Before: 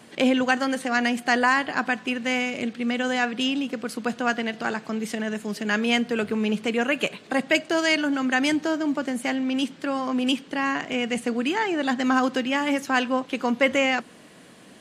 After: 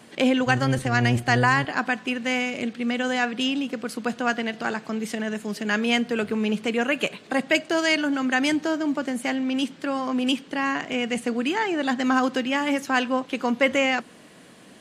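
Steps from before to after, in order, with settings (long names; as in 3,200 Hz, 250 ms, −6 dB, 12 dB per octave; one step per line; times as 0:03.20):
0:00.46–0:01.65: sub-octave generator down 1 octave, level +4 dB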